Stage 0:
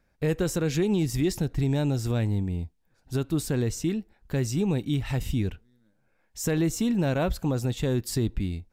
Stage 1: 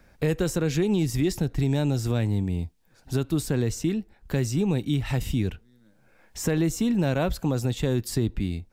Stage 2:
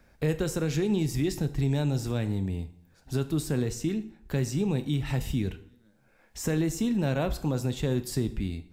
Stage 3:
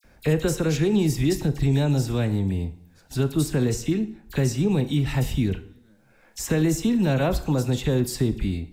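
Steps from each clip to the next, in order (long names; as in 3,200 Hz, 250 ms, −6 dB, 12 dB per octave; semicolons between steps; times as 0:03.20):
multiband upward and downward compressor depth 40%; level +1 dB
dense smooth reverb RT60 0.63 s, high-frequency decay 0.85×, DRR 10.5 dB; level −3.5 dB
all-pass dispersion lows, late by 41 ms, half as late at 2,500 Hz; level +5.5 dB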